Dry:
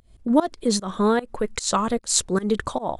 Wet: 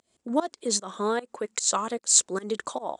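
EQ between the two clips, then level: HPF 300 Hz 12 dB/oct; synth low-pass 7600 Hz, resonance Q 2.8; -5.0 dB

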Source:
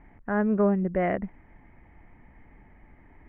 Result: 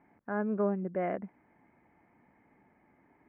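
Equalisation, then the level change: BPF 190–2500 Hz; notch 1900 Hz, Q 9.9; -6.0 dB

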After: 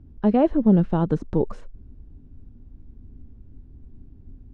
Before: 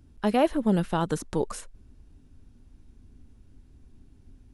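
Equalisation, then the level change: air absorption 150 m; tilt shelf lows +8.5 dB, about 840 Hz; 0.0 dB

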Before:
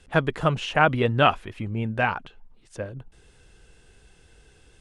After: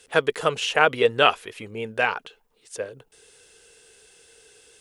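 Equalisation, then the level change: tilt +4 dB/oct; bell 450 Hz +13.5 dB 0.49 oct; -1.0 dB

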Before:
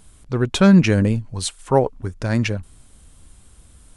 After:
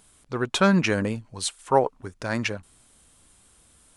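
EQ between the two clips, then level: low shelf 110 Hz -12 dB; low shelf 380 Hz -4.5 dB; dynamic EQ 1100 Hz, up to +5 dB, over -36 dBFS, Q 1.2; -2.5 dB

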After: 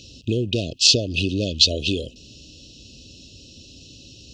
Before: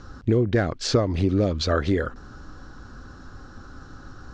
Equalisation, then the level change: HPF 65 Hz; brick-wall FIR band-stop 700–2500 Hz; resonant high shelf 1600 Hz +14 dB, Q 3; -2.0 dB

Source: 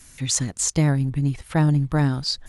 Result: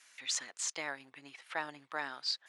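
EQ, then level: BPF 470–2200 Hz; differentiator; +8.5 dB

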